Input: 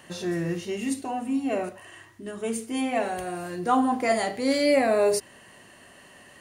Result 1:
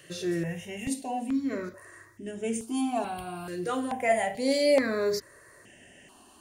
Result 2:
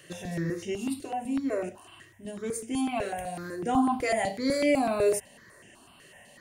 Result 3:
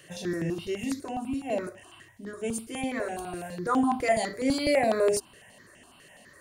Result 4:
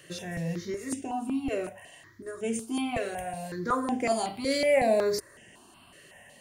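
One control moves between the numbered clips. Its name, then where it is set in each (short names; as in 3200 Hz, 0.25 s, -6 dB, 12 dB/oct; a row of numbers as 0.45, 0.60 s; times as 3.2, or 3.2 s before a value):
step phaser, rate: 2.3, 8, 12, 5.4 Hz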